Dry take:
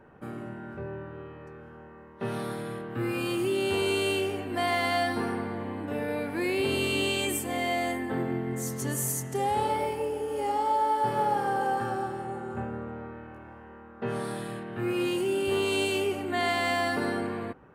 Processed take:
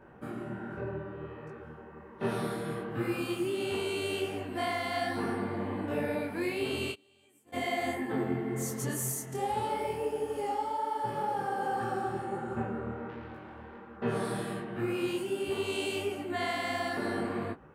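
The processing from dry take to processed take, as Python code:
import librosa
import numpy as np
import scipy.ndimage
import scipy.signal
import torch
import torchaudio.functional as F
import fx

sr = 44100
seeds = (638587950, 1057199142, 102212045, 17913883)

y = fx.self_delay(x, sr, depth_ms=0.17, at=(13.09, 13.97))
y = fx.rider(y, sr, range_db=4, speed_s=0.5)
y = fx.gate_flip(y, sr, shuts_db=-24.0, range_db=-31, at=(6.91, 7.52), fade=0.02)
y = fx.detune_double(y, sr, cents=47)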